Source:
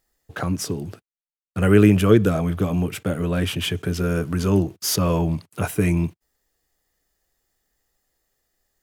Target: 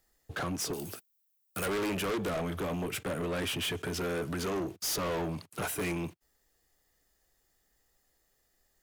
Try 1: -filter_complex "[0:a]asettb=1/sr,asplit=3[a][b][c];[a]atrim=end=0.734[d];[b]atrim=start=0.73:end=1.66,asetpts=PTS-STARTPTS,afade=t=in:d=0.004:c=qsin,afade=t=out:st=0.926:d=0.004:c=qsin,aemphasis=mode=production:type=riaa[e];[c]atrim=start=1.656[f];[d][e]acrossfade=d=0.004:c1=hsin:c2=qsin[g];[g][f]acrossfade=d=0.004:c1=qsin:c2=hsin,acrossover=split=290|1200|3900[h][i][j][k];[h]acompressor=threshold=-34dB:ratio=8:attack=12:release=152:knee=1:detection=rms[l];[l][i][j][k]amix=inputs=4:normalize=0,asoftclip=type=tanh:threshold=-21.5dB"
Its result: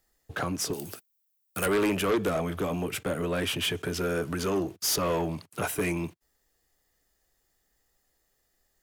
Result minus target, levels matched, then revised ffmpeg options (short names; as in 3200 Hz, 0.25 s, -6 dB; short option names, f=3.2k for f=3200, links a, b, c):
soft clip: distortion -5 dB
-filter_complex "[0:a]asettb=1/sr,asplit=3[a][b][c];[a]atrim=end=0.734[d];[b]atrim=start=0.73:end=1.66,asetpts=PTS-STARTPTS,afade=t=in:d=0.004:c=qsin,afade=t=out:st=0.926:d=0.004:c=qsin,aemphasis=mode=production:type=riaa[e];[c]atrim=start=1.656[f];[d][e]acrossfade=d=0.004:c1=hsin:c2=qsin[g];[g][f]acrossfade=d=0.004:c1=qsin:c2=hsin,acrossover=split=290|1200|3900[h][i][j][k];[h]acompressor=threshold=-34dB:ratio=8:attack=12:release=152:knee=1:detection=rms[l];[l][i][j][k]amix=inputs=4:normalize=0,asoftclip=type=tanh:threshold=-30dB"